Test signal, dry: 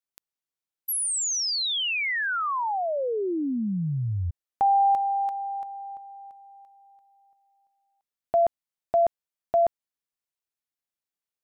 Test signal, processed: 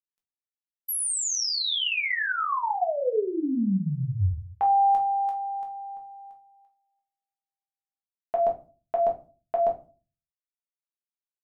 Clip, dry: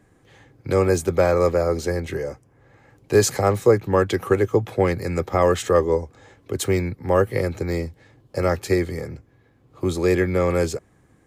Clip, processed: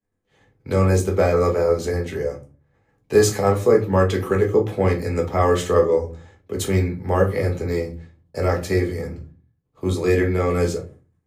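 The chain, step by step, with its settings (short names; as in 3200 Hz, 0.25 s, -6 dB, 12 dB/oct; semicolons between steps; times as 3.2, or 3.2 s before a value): expander -43 dBFS, range -33 dB; shoebox room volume 170 m³, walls furnished, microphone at 1.5 m; gain -3 dB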